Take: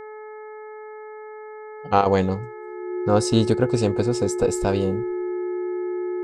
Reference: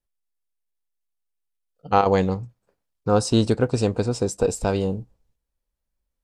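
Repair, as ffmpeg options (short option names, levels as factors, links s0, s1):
-af "bandreject=f=429.1:t=h:w=4,bandreject=f=858.2:t=h:w=4,bandreject=f=1287.3:t=h:w=4,bandreject=f=1716.4:t=h:w=4,bandreject=f=2145.5:t=h:w=4,bandreject=f=360:w=30"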